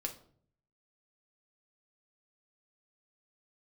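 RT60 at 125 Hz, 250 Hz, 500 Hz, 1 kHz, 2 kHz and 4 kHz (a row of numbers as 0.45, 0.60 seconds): 0.90, 0.75, 0.65, 0.50, 0.40, 0.35 seconds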